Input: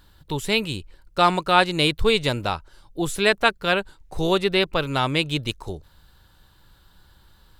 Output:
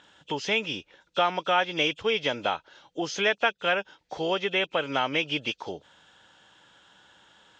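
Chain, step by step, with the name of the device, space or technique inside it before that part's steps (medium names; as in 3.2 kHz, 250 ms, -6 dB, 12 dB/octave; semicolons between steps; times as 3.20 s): hearing aid with frequency lowering (knee-point frequency compression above 2.4 kHz 1.5:1; compression 2.5:1, threshold -28 dBFS, peak gain reduction 11.5 dB; cabinet simulation 330–6100 Hz, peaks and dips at 370 Hz -6 dB, 1.1 kHz -6 dB, 5.2 kHz -4 dB); trim +5.5 dB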